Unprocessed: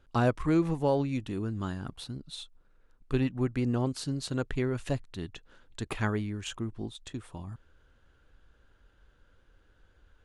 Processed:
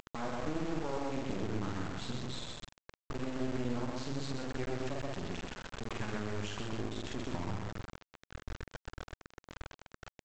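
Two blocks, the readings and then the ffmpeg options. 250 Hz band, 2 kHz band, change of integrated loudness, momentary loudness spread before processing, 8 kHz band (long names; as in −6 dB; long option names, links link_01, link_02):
−7.0 dB, −3.5 dB, −7.5 dB, 16 LU, −3.5 dB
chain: -filter_complex "[0:a]asplit=2[link_01][link_02];[link_02]adelay=46,volume=-3dB[link_03];[link_01][link_03]amix=inputs=2:normalize=0,acompressor=threshold=-43dB:ratio=4,lowshelf=frequency=200:gain=-2.5,asplit=2[link_04][link_05];[link_05]adelay=127,lowpass=frequency=3600:poles=1,volume=-3dB,asplit=2[link_06][link_07];[link_07]adelay=127,lowpass=frequency=3600:poles=1,volume=0.44,asplit=2[link_08][link_09];[link_09]adelay=127,lowpass=frequency=3600:poles=1,volume=0.44,asplit=2[link_10][link_11];[link_11]adelay=127,lowpass=frequency=3600:poles=1,volume=0.44,asplit=2[link_12][link_13];[link_13]adelay=127,lowpass=frequency=3600:poles=1,volume=0.44,asplit=2[link_14][link_15];[link_15]adelay=127,lowpass=frequency=3600:poles=1,volume=0.44[link_16];[link_06][link_08][link_10][link_12][link_14][link_16]amix=inputs=6:normalize=0[link_17];[link_04][link_17]amix=inputs=2:normalize=0,alimiter=level_in=14.5dB:limit=-24dB:level=0:latency=1:release=288,volume=-14.5dB,acompressor=mode=upward:threshold=-60dB:ratio=2.5,aresample=16000,acrusher=bits=6:dc=4:mix=0:aa=0.000001,aresample=44100,highshelf=frequency=2600:gain=-9,volume=15dB"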